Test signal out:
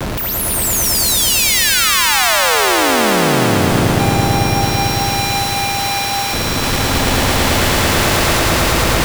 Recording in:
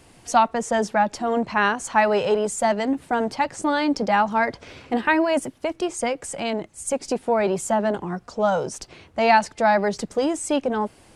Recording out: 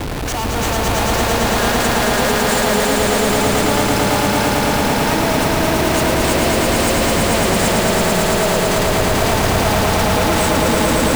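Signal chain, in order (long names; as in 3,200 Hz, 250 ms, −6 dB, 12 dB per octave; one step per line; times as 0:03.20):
noise in a band 510–4,800 Hz −38 dBFS
comparator with hysteresis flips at −32 dBFS
echo that builds up and dies away 111 ms, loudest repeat 5, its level −3 dB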